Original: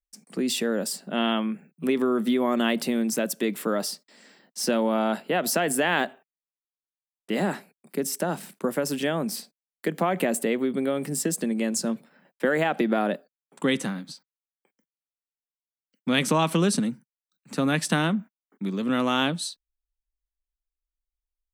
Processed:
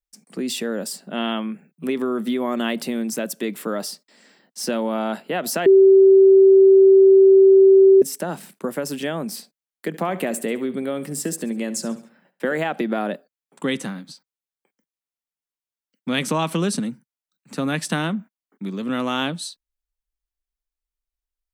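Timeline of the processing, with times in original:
5.66–8.02 bleep 386 Hz -7.5 dBFS
9.87–12.56 feedback echo 69 ms, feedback 40%, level -16 dB

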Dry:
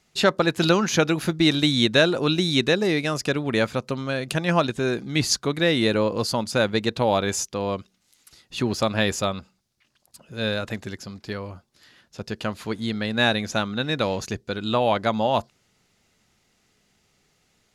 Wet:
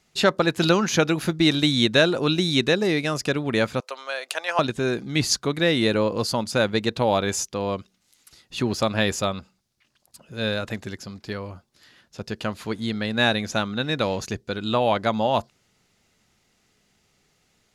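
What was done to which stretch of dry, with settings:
3.8–4.59 HPF 570 Hz 24 dB/oct

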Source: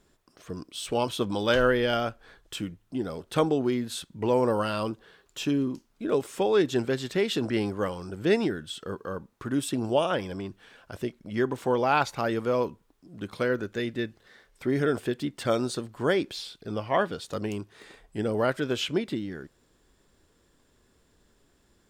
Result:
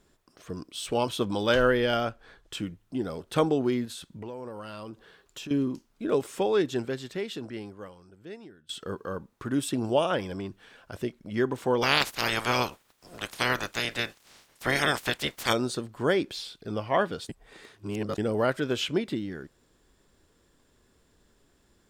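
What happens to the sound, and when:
2.05–2.67 high shelf 11000 Hz -7 dB
3.85–5.51 compressor 5:1, threshold -37 dBFS
6.29–8.69 fade out quadratic, to -21.5 dB
11.81–15.52 spectral limiter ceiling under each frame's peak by 29 dB
17.29–18.18 reverse

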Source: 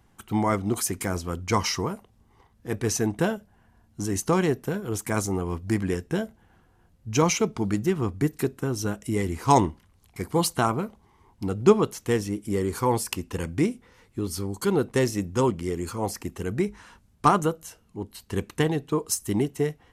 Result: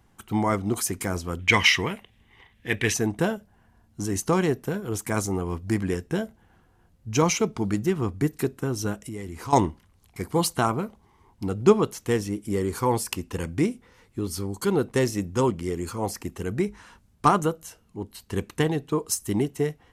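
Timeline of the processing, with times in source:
1.39–2.94 band shelf 2500 Hz +15.5 dB 1.3 oct
9.02–9.53 compressor 3:1, threshold -34 dBFS

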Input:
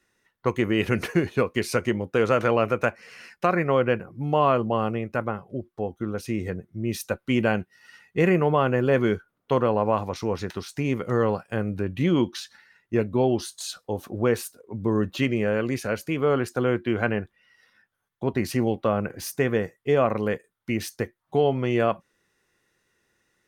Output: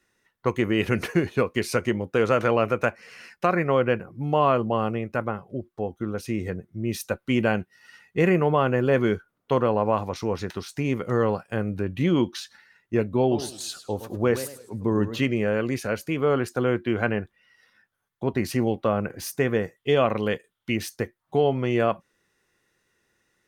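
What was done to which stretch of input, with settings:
13.2–15.2 warbling echo 0.108 s, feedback 31%, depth 205 cents, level -12 dB
19.76–20.76 bell 3200 Hz +10.5 dB 0.6 oct

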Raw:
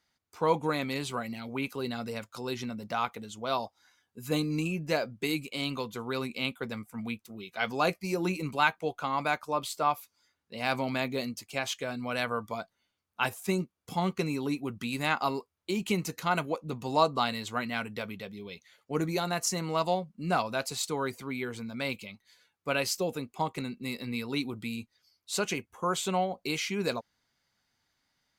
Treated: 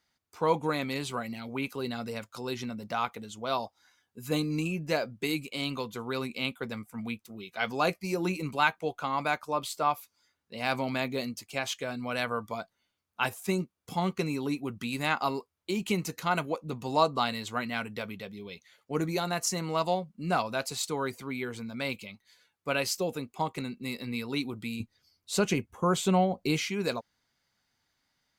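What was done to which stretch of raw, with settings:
24.8–26.69 low shelf 350 Hz +11 dB

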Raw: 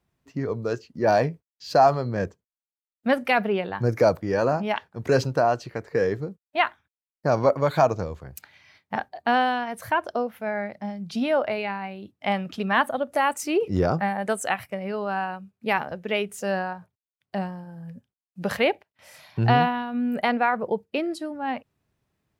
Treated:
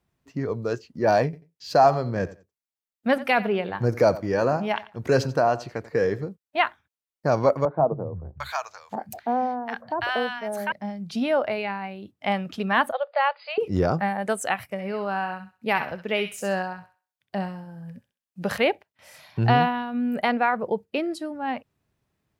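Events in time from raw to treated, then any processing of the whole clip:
1.24–6.28 feedback echo 89 ms, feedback 20%, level -17 dB
7.65–10.72 three bands offset in time mids, lows, highs 0.14/0.75 s, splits 160/970 Hz
12.92–13.58 brick-wall FIR band-pass 460–5000 Hz
14.65–18.58 thin delay 65 ms, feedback 30%, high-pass 1400 Hz, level -5.5 dB

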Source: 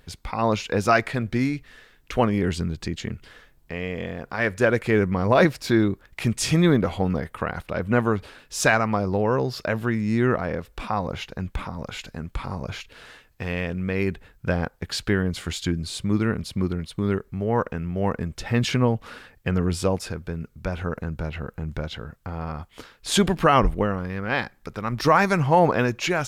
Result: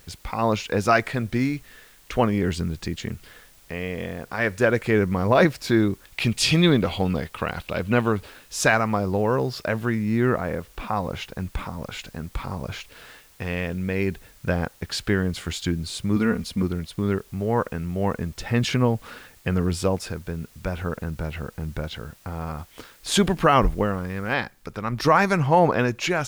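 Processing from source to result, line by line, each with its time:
6.05–8.12 band shelf 3400 Hz +8.5 dB 1.2 oct
9.99–10.95 Bessel low-pass 3700 Hz
13.74–14.46 bell 1200 Hz -8 dB 0.23 oct
16.16–16.63 comb 4.2 ms
24.34 noise floor step -55 dB -65 dB

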